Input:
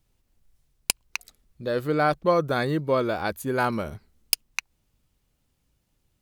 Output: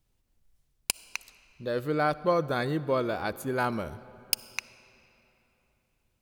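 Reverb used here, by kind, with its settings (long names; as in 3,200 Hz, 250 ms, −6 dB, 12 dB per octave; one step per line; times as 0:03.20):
comb and all-pass reverb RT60 3.4 s, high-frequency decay 0.7×, pre-delay 20 ms, DRR 17 dB
level −4 dB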